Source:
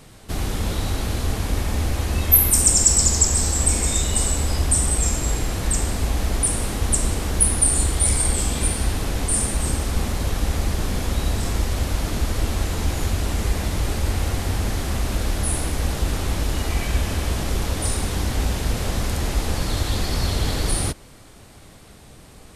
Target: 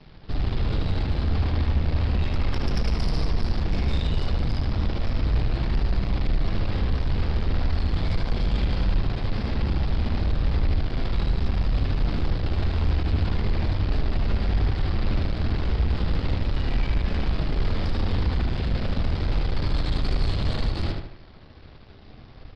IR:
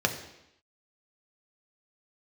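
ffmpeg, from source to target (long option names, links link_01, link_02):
-filter_complex "[0:a]lowshelf=frequency=130:gain=9,aeval=exprs='1.06*(cos(1*acos(clip(val(0)/1.06,-1,1)))-cos(1*PI/2))+0.106*(cos(6*acos(clip(val(0)/1.06,-1,1)))-cos(6*PI/2))':channel_layout=same,aresample=11025,aeval=exprs='sgn(val(0))*max(abs(val(0))-0.00631,0)':channel_layout=same,aresample=44100,flanger=delay=4.8:depth=8.6:regen=-51:speed=0.35:shape=triangular,asoftclip=type=tanh:threshold=-22.5dB,asplit=2[link_01][link_02];[link_02]adelay=76,lowpass=frequency=4100:poles=1,volume=-3.5dB,asplit=2[link_03][link_04];[link_04]adelay=76,lowpass=frequency=4100:poles=1,volume=0.44,asplit=2[link_05][link_06];[link_06]adelay=76,lowpass=frequency=4100:poles=1,volume=0.44,asplit=2[link_07][link_08];[link_08]adelay=76,lowpass=frequency=4100:poles=1,volume=0.44,asplit=2[link_09][link_10];[link_10]adelay=76,lowpass=frequency=4100:poles=1,volume=0.44,asplit=2[link_11][link_12];[link_12]adelay=76,lowpass=frequency=4100:poles=1,volume=0.44[link_13];[link_01][link_03][link_05][link_07][link_09][link_11][link_13]amix=inputs=7:normalize=0,volume=2dB" -ar 48000 -c:a aac -b:a 128k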